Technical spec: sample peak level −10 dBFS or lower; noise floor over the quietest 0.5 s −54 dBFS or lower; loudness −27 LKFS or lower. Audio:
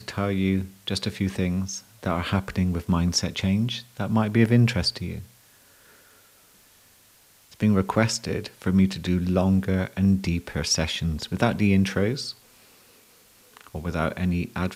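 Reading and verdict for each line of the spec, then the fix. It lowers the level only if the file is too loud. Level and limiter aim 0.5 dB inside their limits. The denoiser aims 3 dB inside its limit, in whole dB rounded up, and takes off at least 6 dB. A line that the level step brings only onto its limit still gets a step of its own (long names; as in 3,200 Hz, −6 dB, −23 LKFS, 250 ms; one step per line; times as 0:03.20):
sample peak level −6.0 dBFS: out of spec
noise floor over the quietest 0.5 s −57 dBFS: in spec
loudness −24.5 LKFS: out of spec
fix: level −3 dB
brickwall limiter −10.5 dBFS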